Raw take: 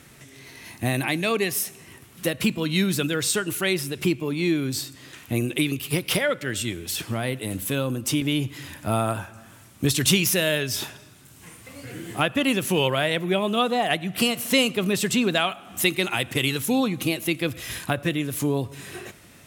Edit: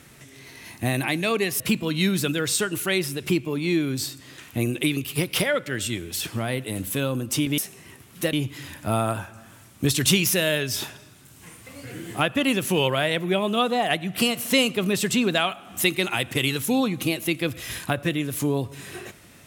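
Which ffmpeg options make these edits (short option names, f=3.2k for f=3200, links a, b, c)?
-filter_complex "[0:a]asplit=4[a][b][c][d];[a]atrim=end=1.602[e];[b]atrim=start=2.348:end=8.332[f];[c]atrim=start=1.598:end=2.352[g];[d]atrim=start=8.328[h];[e][f]acrossfade=d=0.004:c1=hsin:c2=hsin[i];[i][g]acrossfade=d=0.004:c1=hsin:c2=hsin[j];[j][h]acrossfade=d=0.004:c1=hsin:c2=hsin"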